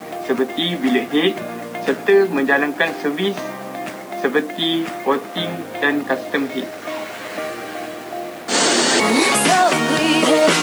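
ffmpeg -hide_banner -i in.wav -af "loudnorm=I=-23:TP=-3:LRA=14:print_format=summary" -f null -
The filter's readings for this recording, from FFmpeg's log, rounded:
Input Integrated:    -17.1 LUFS
Input True Peak:      -2.5 dBTP
Input LRA:             5.9 LU
Input Threshold:     -27.8 LUFS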